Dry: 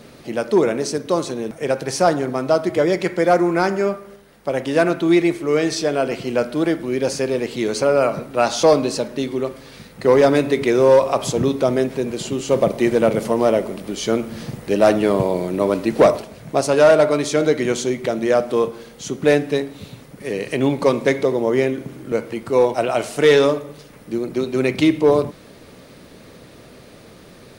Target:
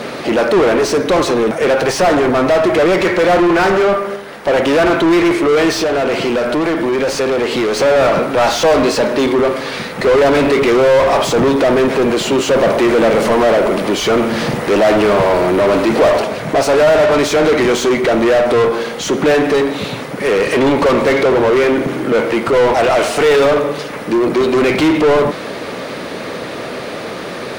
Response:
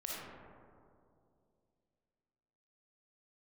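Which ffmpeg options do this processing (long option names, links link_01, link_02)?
-filter_complex "[0:a]asplit=2[link_01][link_02];[link_02]highpass=frequency=720:poles=1,volume=32dB,asoftclip=type=tanh:threshold=-4.5dB[link_03];[link_01][link_03]amix=inputs=2:normalize=0,lowpass=frequency=1800:poles=1,volume=-6dB,asettb=1/sr,asplit=3[link_04][link_05][link_06];[link_04]atrim=end=5.744[link_07];[link_05]atrim=start=5.74:end=7.77,asetpts=PTS-STARTPTS,afade=type=in:duration=0.004:curve=qsin,afade=type=out:start_time=2.026:duration=0.004:curve=qsin,acompressor=threshold=-13dB:ratio=6[link_08];[link_06]atrim=start=7.766[link_09];[link_07][link_08]acrossfade=duration=0.004:curve1=hsin:curve2=qsin[link_10];[link_10][link_09]acrossfade=duration=0.004:curve1=qsin:curve2=hsin"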